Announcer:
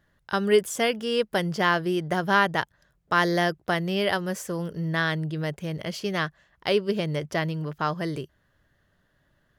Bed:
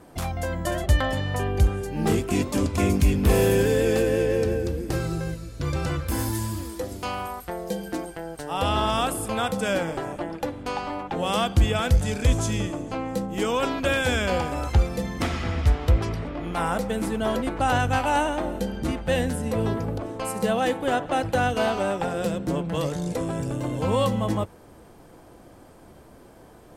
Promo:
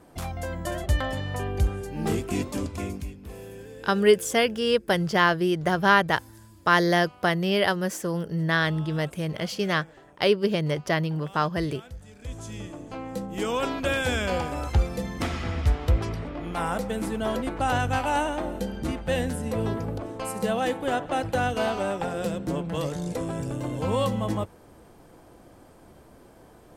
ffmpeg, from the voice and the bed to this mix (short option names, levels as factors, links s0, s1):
-filter_complex "[0:a]adelay=3550,volume=1.26[s0];[1:a]volume=5.96,afade=t=out:st=2.4:d=0.76:silence=0.125893,afade=t=in:st=12.15:d=1.4:silence=0.105925[s1];[s0][s1]amix=inputs=2:normalize=0"